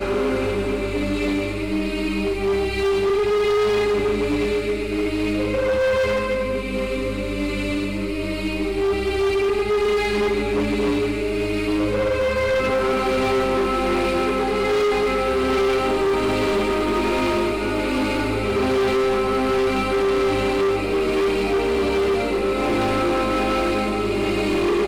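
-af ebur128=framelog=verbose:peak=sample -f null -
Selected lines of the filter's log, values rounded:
Integrated loudness:
  I:         -21.1 LUFS
  Threshold: -31.1 LUFS
Loudness range:
  LRA:         2.3 LU
  Threshold: -41.0 LUFS
  LRA low:   -22.5 LUFS
  LRA high:  -20.1 LUFS
Sample peak:
  Peak:      -17.2 dBFS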